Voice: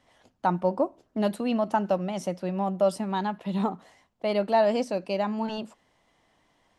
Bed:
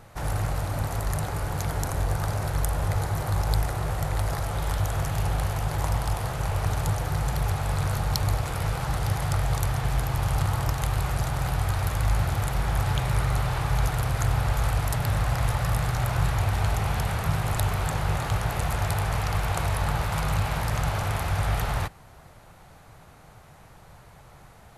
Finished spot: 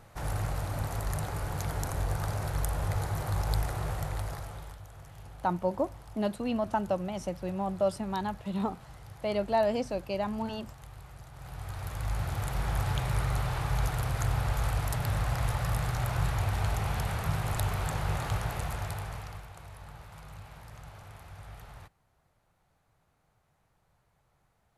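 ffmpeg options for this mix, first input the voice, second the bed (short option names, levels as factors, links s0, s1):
-filter_complex "[0:a]adelay=5000,volume=0.596[s0];[1:a]volume=3.98,afade=t=out:st=3.88:d=0.91:silence=0.141254,afade=t=in:st=11.32:d=1.35:silence=0.141254,afade=t=out:st=18.32:d=1.17:silence=0.149624[s1];[s0][s1]amix=inputs=2:normalize=0"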